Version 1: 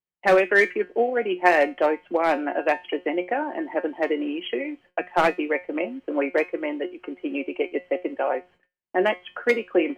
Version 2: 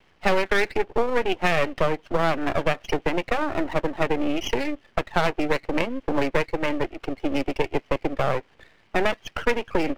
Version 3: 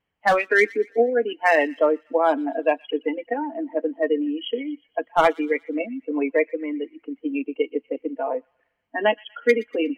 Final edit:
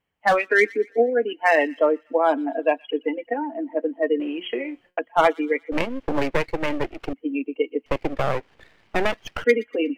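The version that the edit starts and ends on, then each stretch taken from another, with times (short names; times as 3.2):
3
4.2–4.99 from 1
5.72–7.13 from 2
7.86–9.44 from 2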